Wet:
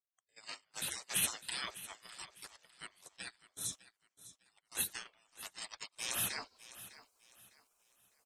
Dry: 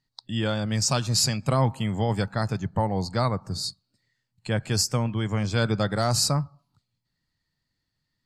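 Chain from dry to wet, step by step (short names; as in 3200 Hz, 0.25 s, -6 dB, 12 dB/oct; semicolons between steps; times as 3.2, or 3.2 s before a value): weighting filter D; spectral gate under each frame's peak -25 dB weak; gate -43 dBFS, range -34 dB; reverse; upward compressor, threshold -43 dBFS; reverse; feedback echo 0.604 s, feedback 31%, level -16 dB; gain +2 dB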